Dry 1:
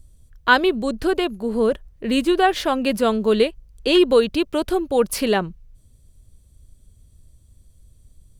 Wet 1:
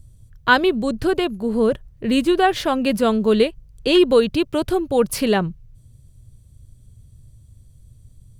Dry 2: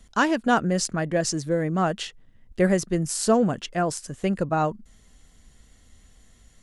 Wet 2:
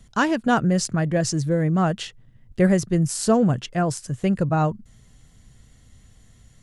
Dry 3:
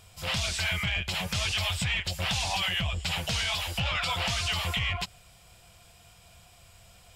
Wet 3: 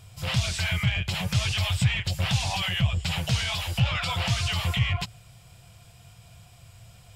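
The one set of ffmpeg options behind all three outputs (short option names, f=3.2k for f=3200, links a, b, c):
-af "equalizer=f=120:t=o:w=0.89:g=13.5"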